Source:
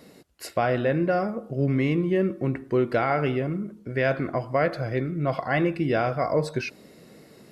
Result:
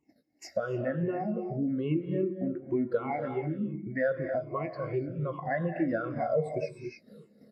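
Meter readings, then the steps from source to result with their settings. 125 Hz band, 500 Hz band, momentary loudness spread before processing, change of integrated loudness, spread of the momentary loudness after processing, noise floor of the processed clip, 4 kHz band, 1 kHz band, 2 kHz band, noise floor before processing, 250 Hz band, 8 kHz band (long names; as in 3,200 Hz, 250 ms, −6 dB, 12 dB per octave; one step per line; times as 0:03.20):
−8.0 dB, −6.0 dB, 7 LU, −6.5 dB, 6 LU, −65 dBFS, below −10 dB, −8.5 dB, −9.0 dB, −52 dBFS, −5.0 dB, can't be measured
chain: rippled gain that drifts along the octave scale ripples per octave 0.69, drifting −2.6 Hz, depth 18 dB
noise gate −46 dBFS, range −13 dB
reverb whose tail is shaped and stops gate 320 ms rising, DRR 5.5 dB
downward compressor 2 to 1, threshold −38 dBFS, peak gain reduction 14 dB
double-tracking delay 19 ms −11 dB
every bin expanded away from the loudest bin 1.5 to 1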